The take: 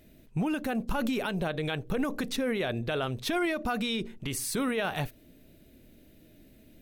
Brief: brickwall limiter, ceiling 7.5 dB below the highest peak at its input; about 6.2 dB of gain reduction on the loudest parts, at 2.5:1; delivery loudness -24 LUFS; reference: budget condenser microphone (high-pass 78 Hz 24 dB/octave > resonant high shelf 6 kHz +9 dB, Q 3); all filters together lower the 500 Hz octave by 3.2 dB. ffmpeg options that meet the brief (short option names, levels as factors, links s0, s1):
-af "equalizer=f=500:t=o:g=-4,acompressor=threshold=0.0178:ratio=2.5,alimiter=level_in=2.51:limit=0.0631:level=0:latency=1,volume=0.398,highpass=f=78:w=0.5412,highpass=f=78:w=1.3066,highshelf=f=6000:t=q:w=3:g=9,volume=4.73"